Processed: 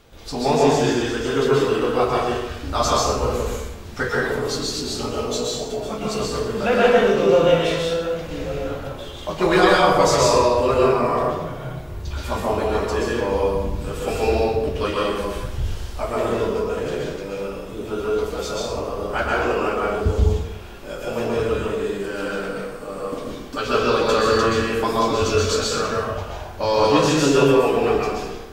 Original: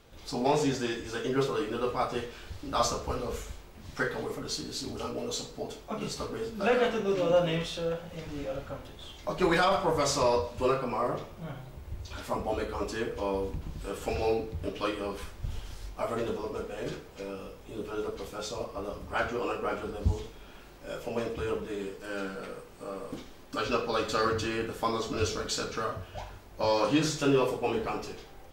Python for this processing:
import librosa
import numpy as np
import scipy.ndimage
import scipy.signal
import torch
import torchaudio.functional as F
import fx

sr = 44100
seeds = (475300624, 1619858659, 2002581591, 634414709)

y = fx.rev_plate(x, sr, seeds[0], rt60_s=0.94, hf_ratio=0.7, predelay_ms=110, drr_db=-3.5)
y = y * 10.0 ** (5.5 / 20.0)